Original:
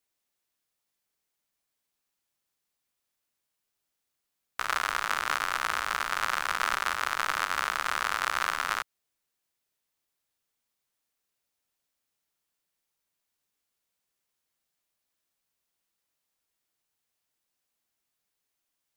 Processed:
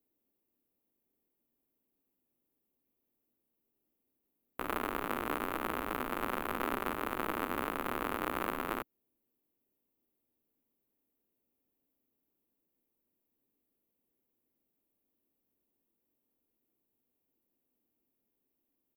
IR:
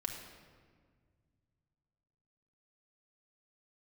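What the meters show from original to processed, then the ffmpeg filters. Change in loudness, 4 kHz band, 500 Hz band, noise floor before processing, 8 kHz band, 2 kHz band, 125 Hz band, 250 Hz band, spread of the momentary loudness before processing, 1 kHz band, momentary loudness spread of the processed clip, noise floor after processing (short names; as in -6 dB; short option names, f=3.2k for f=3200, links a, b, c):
-7.5 dB, -13.5 dB, +5.0 dB, -83 dBFS, -13.5 dB, -11.0 dB, +4.5 dB, +13.0 dB, 3 LU, -7.0 dB, 3 LU, -83 dBFS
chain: -af "firequalizer=gain_entry='entry(160,0);entry(250,12);entry(650,-4);entry(1500,-16);entry(2600,-13);entry(5300,-28);entry(13000,-2)':delay=0.05:min_phase=1,volume=4dB"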